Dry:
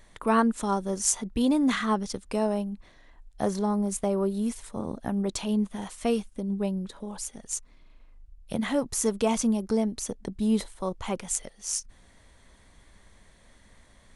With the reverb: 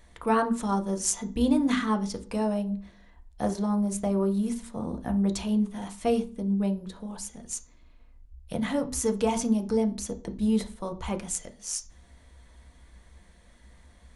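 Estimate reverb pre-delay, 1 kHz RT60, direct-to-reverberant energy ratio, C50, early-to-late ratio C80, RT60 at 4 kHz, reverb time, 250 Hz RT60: 3 ms, 0.40 s, 5.0 dB, 15.5 dB, 21.0 dB, 0.35 s, 0.40 s, 0.50 s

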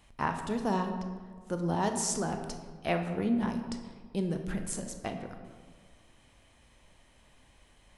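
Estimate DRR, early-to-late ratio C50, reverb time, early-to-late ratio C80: 5.0 dB, 7.0 dB, 1.6 s, 8.5 dB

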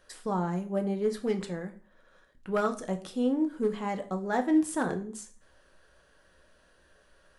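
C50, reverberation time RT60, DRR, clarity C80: 14.5 dB, 0.45 s, 5.5 dB, 18.5 dB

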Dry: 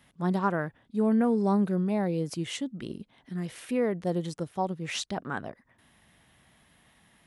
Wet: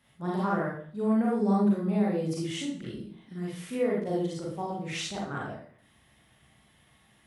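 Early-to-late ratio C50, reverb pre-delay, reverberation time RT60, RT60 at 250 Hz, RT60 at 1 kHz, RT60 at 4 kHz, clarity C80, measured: 1.5 dB, 33 ms, 0.50 s, 0.60 s, 0.50 s, 0.45 s, 6.5 dB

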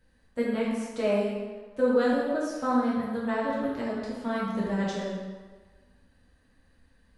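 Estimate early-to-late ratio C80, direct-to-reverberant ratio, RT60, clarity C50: 1.5 dB, -8.0 dB, 1.5 s, -1.0 dB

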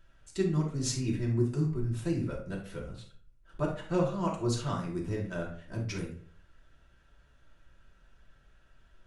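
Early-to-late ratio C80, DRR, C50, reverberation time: 11.5 dB, -3.5 dB, 5.5 dB, 0.50 s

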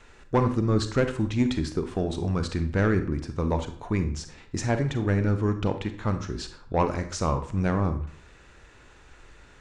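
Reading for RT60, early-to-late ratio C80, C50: 0.55 s, 15.0 dB, 10.0 dB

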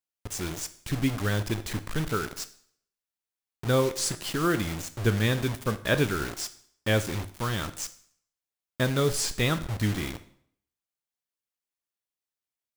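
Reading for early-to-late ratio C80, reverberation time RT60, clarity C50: 18.5 dB, 0.60 s, 15.5 dB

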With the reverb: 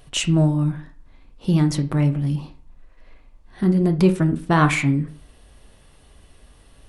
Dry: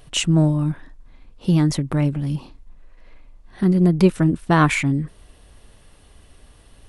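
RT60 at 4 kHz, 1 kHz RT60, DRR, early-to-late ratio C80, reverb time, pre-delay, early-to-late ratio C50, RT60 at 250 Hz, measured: 0.30 s, 0.50 s, 7.5 dB, 19.0 dB, 0.50 s, 8 ms, 14.0 dB, 0.45 s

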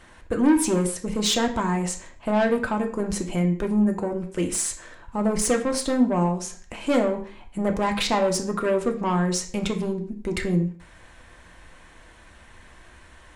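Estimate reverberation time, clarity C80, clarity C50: 0.50 s, 15.0 dB, 11.0 dB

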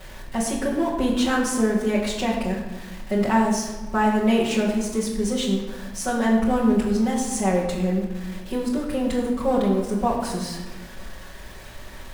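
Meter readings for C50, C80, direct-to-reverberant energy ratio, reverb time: 4.0 dB, 6.0 dB, -7.0 dB, 1.3 s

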